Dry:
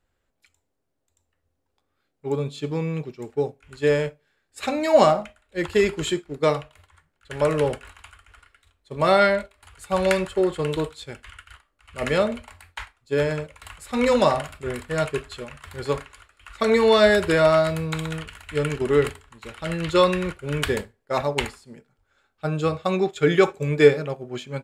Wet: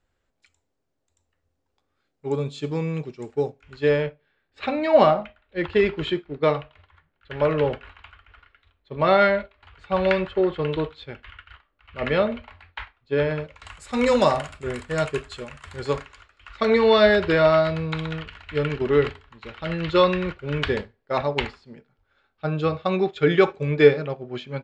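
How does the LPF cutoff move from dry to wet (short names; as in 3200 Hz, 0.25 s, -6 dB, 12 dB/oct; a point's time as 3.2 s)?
LPF 24 dB/oct
3.39 s 7800 Hz
4.07 s 3800 Hz
13.34 s 3800 Hz
13.77 s 8400 Hz
15.66 s 8400 Hz
16.76 s 4700 Hz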